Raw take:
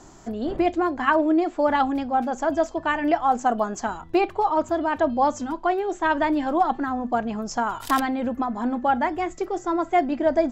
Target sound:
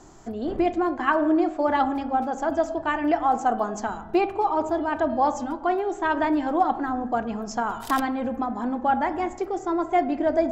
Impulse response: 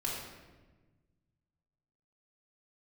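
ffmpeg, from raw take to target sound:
-filter_complex "[0:a]asplit=2[s0][s1];[s1]lowpass=2100[s2];[1:a]atrim=start_sample=2205,asetrate=52920,aresample=44100[s3];[s2][s3]afir=irnorm=-1:irlink=0,volume=0.316[s4];[s0][s4]amix=inputs=2:normalize=0,volume=0.708"

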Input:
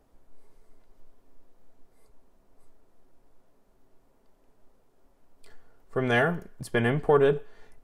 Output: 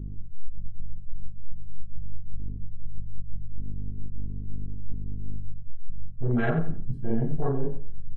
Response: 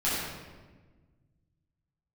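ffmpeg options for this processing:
-filter_complex "[0:a]asplit=2[s0][s1];[s1]adelay=25,volume=0.251[s2];[s0][s2]amix=inputs=2:normalize=0[s3];[1:a]atrim=start_sample=2205,atrim=end_sample=3528[s4];[s3][s4]afir=irnorm=-1:irlink=0,asetrate=42336,aresample=44100,bass=f=250:g=10,treble=f=4000:g=-4,aeval=exprs='val(0)+0.0251*(sin(2*PI*50*n/s)+sin(2*PI*2*50*n/s)/2+sin(2*PI*3*50*n/s)/3+sin(2*PI*4*50*n/s)/4+sin(2*PI*5*50*n/s)/5)':c=same,areverse,acompressor=threshold=0.112:ratio=8,areverse,highshelf=f=2600:g=-10.5,afwtdn=0.0316,asplit=2[s5][s6];[s6]adelay=89,lowpass=f=4900:p=1,volume=0.282,asplit=2[s7][s8];[s8]adelay=89,lowpass=f=4900:p=1,volume=0.28,asplit=2[s9][s10];[s10]adelay=89,lowpass=f=4900:p=1,volume=0.28[s11];[s5][s7][s9][s11]amix=inputs=4:normalize=0"

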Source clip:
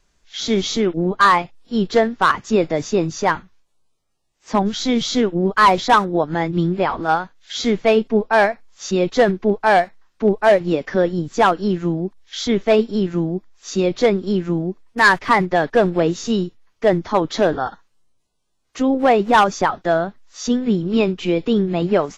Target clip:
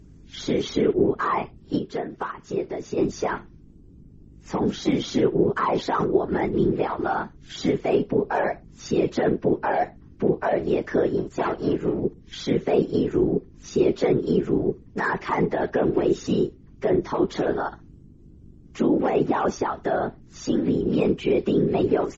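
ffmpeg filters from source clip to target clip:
-filter_complex "[0:a]asplit=3[s0][s1][s2];[s0]afade=t=out:st=11.16:d=0.02[s3];[s1]aeval=exprs='if(lt(val(0),0),0.251*val(0),val(0))':c=same,afade=t=in:st=11.16:d=0.02,afade=t=out:st=11.99:d=0.02[s4];[s2]afade=t=in:st=11.99:d=0.02[s5];[s3][s4][s5]amix=inputs=3:normalize=0,highpass=47,aeval=exprs='val(0)+0.00794*(sin(2*PI*50*n/s)+sin(2*PI*2*50*n/s)/2+sin(2*PI*3*50*n/s)/3+sin(2*PI*4*50*n/s)/4+sin(2*PI*5*50*n/s)/5)':c=same,acrossover=split=300|1500[s6][s7][s8];[s8]asoftclip=type=tanh:threshold=0.0631[s9];[s6][s7][s9]amix=inputs=3:normalize=0,acrossover=split=6200[s10][s11];[s11]acompressor=threshold=0.00447:ratio=4:attack=1:release=60[s12];[s10][s12]amix=inputs=2:normalize=0,equalizer=f=480:t=o:w=0.47:g=-6,asplit=2[s13][s14];[s14]adelay=60,lowpass=f=2000:p=1,volume=0.0631,asplit=2[s15][s16];[s16]adelay=60,lowpass=f=2000:p=1,volume=0.29[s17];[s15][s17]amix=inputs=2:normalize=0[s18];[s13][s18]amix=inputs=2:normalize=0,asplit=3[s19][s20][s21];[s19]afade=t=out:st=1.77:d=0.02[s22];[s20]acompressor=threshold=0.0398:ratio=4,afade=t=in:st=1.77:d=0.02,afade=t=out:st=2.97:d=0.02[s23];[s21]afade=t=in:st=2.97:d=0.02[s24];[s22][s23][s24]amix=inputs=3:normalize=0,alimiter=limit=0.188:level=0:latency=1:release=12,afftfilt=real='hypot(re,im)*cos(2*PI*random(0))':imag='hypot(re,im)*sin(2*PI*random(1))':win_size=512:overlap=0.75,equalizer=f=100:t=o:w=0.67:g=-6,equalizer=f=400:t=o:w=0.67:g=9,equalizer=f=4000:t=o:w=0.67:g=-5,volume=1.5" -ar 48000 -c:a libmp3lame -b:a 32k

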